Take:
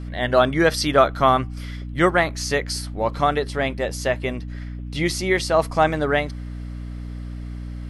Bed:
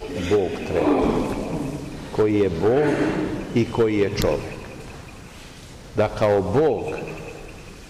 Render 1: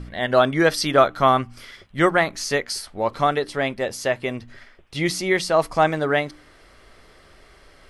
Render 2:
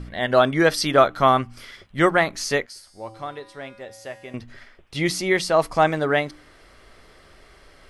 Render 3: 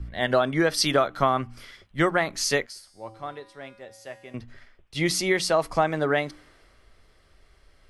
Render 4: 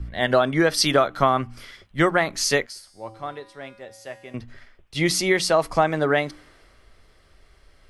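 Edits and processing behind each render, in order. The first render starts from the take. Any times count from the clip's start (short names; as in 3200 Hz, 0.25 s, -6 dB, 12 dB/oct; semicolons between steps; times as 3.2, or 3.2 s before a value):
de-hum 60 Hz, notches 5
2.66–4.34 resonator 110 Hz, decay 1.5 s, harmonics odd, mix 80%
compressor 12:1, threshold -18 dBFS, peak gain reduction 9.5 dB; three-band expander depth 40%
gain +3 dB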